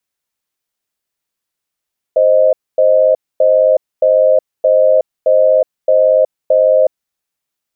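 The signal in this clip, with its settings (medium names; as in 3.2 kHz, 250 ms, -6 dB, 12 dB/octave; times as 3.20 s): cadence 524 Hz, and 622 Hz, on 0.37 s, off 0.25 s, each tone -9.5 dBFS 4.74 s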